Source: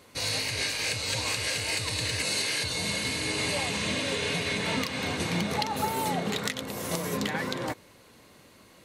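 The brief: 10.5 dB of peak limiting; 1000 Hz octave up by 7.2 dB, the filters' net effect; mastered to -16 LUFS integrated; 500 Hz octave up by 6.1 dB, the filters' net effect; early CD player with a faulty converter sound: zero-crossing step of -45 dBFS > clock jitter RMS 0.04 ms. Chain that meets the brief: bell 500 Hz +5.5 dB; bell 1000 Hz +7 dB; limiter -21 dBFS; zero-crossing step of -45 dBFS; clock jitter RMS 0.04 ms; gain +13 dB

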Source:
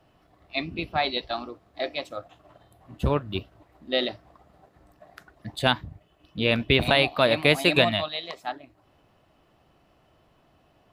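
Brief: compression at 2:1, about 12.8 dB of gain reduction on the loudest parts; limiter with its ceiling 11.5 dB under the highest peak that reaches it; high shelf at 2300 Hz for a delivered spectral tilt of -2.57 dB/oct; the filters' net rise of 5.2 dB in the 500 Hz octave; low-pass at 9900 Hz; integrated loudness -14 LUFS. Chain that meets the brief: LPF 9900 Hz; bell 500 Hz +6 dB; high shelf 2300 Hz +6.5 dB; compressor 2:1, threshold -35 dBFS; gain +23.5 dB; limiter -0.5 dBFS

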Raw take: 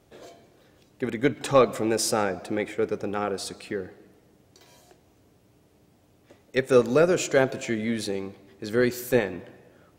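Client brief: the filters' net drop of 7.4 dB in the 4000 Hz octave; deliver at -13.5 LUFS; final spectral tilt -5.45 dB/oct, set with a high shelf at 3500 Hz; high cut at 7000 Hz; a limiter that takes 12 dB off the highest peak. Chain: LPF 7000 Hz; high shelf 3500 Hz -4.5 dB; bell 4000 Hz -5.5 dB; gain +17 dB; limiter -0.5 dBFS

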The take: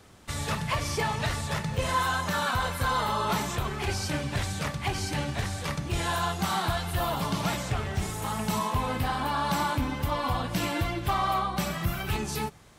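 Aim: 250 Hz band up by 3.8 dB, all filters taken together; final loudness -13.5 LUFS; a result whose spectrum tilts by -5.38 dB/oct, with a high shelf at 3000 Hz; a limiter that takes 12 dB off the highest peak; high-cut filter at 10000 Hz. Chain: LPF 10000 Hz; bell 250 Hz +5.5 dB; high shelf 3000 Hz -4.5 dB; gain +22 dB; limiter -5.5 dBFS

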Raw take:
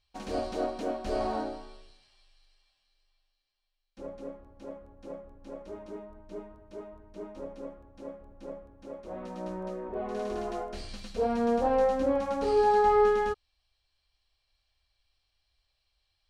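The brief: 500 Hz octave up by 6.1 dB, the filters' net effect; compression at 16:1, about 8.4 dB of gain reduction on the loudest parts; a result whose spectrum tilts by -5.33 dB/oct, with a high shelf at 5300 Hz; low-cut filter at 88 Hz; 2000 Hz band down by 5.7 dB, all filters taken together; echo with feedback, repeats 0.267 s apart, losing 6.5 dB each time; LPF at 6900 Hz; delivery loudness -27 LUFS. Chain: HPF 88 Hz; LPF 6900 Hz; bell 500 Hz +7.5 dB; bell 2000 Hz -8.5 dB; high shelf 5300 Hz +4 dB; compressor 16:1, threshold -23 dBFS; feedback echo 0.267 s, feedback 47%, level -6.5 dB; gain +4.5 dB

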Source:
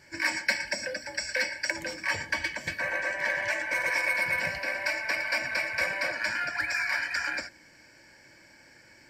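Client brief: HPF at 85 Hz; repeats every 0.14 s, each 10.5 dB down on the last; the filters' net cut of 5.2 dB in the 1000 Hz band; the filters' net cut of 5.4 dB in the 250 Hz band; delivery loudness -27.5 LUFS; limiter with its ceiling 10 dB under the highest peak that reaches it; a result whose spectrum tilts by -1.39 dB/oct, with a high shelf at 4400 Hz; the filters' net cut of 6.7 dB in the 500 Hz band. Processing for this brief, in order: HPF 85 Hz; bell 250 Hz -5 dB; bell 500 Hz -5.5 dB; bell 1000 Hz -4.5 dB; high shelf 4400 Hz -5.5 dB; limiter -24 dBFS; feedback echo 0.14 s, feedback 30%, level -10.5 dB; gain +5.5 dB

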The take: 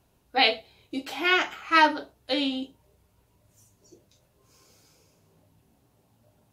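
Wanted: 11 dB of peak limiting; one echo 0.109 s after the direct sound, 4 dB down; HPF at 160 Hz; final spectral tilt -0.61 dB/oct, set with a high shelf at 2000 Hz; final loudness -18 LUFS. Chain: HPF 160 Hz; high shelf 2000 Hz +8.5 dB; limiter -11 dBFS; echo 0.109 s -4 dB; gain +6 dB

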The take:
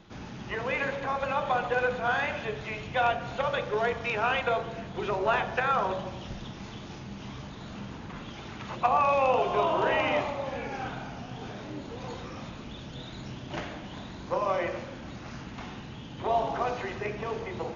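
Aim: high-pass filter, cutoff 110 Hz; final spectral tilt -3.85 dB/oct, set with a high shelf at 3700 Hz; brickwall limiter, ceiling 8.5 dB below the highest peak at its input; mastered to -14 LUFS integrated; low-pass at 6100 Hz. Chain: HPF 110 Hz; LPF 6100 Hz; high shelf 3700 Hz -8 dB; gain +20 dB; limiter -1.5 dBFS

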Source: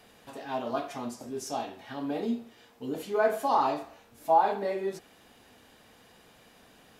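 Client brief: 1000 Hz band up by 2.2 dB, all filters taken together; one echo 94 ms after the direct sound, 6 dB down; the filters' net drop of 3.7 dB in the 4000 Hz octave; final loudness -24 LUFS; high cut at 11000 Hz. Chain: LPF 11000 Hz; bell 1000 Hz +3 dB; bell 4000 Hz -5 dB; echo 94 ms -6 dB; gain +3.5 dB

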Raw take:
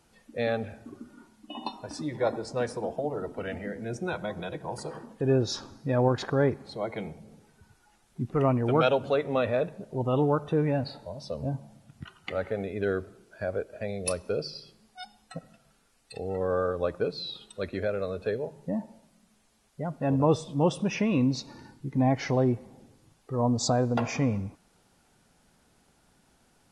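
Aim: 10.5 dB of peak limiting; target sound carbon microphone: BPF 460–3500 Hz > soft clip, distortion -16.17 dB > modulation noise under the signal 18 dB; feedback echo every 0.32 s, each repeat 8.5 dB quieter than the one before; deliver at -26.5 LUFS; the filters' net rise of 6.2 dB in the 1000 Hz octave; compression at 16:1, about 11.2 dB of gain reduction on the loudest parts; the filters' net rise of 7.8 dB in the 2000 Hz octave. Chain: bell 1000 Hz +6.5 dB; bell 2000 Hz +8.5 dB; compressor 16:1, threshold -26 dBFS; limiter -25 dBFS; BPF 460–3500 Hz; feedback echo 0.32 s, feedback 38%, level -8.5 dB; soft clip -31 dBFS; modulation noise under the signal 18 dB; gain +14 dB

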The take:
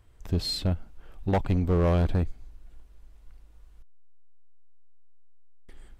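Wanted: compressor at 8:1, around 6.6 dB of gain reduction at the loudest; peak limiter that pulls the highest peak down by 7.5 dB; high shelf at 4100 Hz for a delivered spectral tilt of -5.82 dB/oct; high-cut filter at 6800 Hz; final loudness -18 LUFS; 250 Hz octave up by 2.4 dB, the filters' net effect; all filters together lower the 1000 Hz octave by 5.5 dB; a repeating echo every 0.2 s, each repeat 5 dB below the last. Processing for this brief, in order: LPF 6800 Hz; bell 250 Hz +4 dB; bell 1000 Hz -8.5 dB; high shelf 4100 Hz +6 dB; compressor 8:1, threshold -26 dBFS; limiter -27.5 dBFS; feedback echo 0.2 s, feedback 56%, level -5 dB; gain +17.5 dB

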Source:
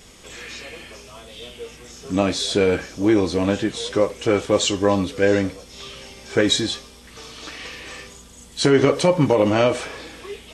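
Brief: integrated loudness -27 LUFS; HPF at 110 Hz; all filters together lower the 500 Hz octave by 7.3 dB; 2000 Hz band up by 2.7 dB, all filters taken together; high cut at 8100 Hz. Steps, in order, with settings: HPF 110 Hz; LPF 8100 Hz; bell 500 Hz -9 dB; bell 2000 Hz +4 dB; gain -3.5 dB

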